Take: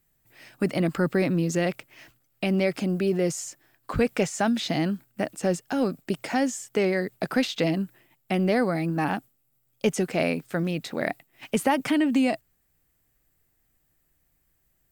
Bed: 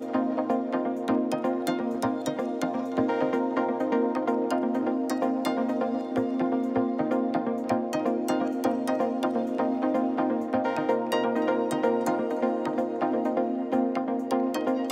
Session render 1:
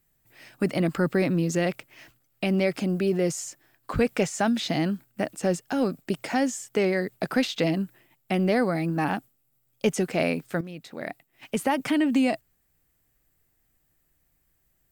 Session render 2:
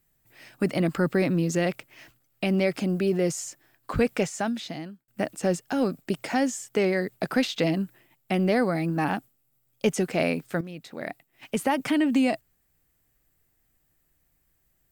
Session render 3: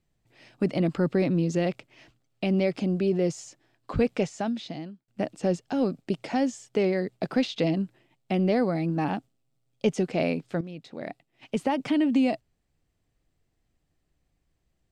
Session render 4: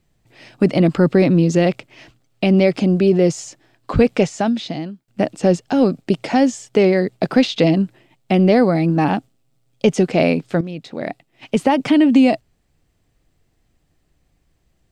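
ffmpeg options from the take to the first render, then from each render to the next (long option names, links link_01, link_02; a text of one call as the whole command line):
ffmpeg -i in.wav -filter_complex "[0:a]asplit=2[link_01][link_02];[link_01]atrim=end=10.61,asetpts=PTS-STARTPTS,afade=type=out:start_time=10.606:duration=0.004:curve=hsin:silence=0.223872[link_03];[link_02]atrim=start=10.61,asetpts=PTS-STARTPTS,afade=type=in:duration=1.47:silence=0.223872[link_04];[link_03][link_04]concat=n=2:v=0:a=1" out.wav
ffmpeg -i in.wav -filter_complex "[0:a]asplit=2[link_01][link_02];[link_01]atrim=end=5.08,asetpts=PTS-STARTPTS,afade=type=out:start_time=4.08:duration=1[link_03];[link_02]atrim=start=5.08,asetpts=PTS-STARTPTS,afade=type=in:duration=0.004:curve=hsin[link_04];[link_03][link_04]concat=n=2:v=0:a=1" out.wav
ffmpeg -i in.wav -af "lowpass=4700,equalizer=frequency=1600:width_type=o:width=1.3:gain=-7.5" out.wav
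ffmpeg -i in.wav -af "volume=10.5dB,alimiter=limit=-2dB:level=0:latency=1" out.wav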